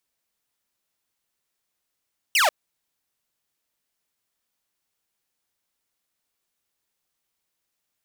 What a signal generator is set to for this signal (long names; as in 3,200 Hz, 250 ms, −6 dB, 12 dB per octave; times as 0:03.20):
single falling chirp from 3,100 Hz, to 550 Hz, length 0.14 s saw, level −13.5 dB